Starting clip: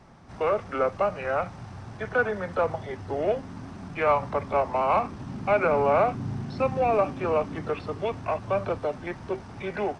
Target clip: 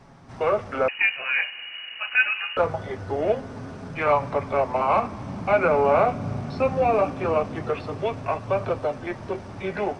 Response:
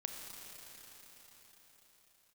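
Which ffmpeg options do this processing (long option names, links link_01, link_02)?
-filter_complex "[0:a]flanger=delay=7.2:depth=5:regen=-36:speed=0.24:shape=sinusoidal,asplit=2[link_01][link_02];[1:a]atrim=start_sample=2205,asetrate=29106,aresample=44100[link_03];[link_02][link_03]afir=irnorm=-1:irlink=0,volume=-16.5dB[link_04];[link_01][link_04]amix=inputs=2:normalize=0,asettb=1/sr,asplit=3[link_05][link_06][link_07];[link_05]atrim=end=0.884[link_08];[link_06]atrim=start=0.88:end=2.57,asetpts=PTS-STARTPTS,afade=type=in:duration=0.004:curve=qsin,afade=type=out:start_time=1.686:duration=0.004:curve=qsin,lowpass=frequency=2600:width_type=q:width=0.5098,lowpass=frequency=2600:width_type=q:width=0.6013,lowpass=frequency=2600:width_type=q:width=0.9,lowpass=frequency=2600:width_type=q:width=2.563,afreqshift=-3000[link_09];[link_07]atrim=start=2.566[link_10];[link_08][link_09]acrossfade=duration=0.004:curve1=hsin:curve2=qsin[link_11];[link_11][link_10]acrossfade=duration=0.004:curve1=qsin:curve2=hsin,volume=5dB"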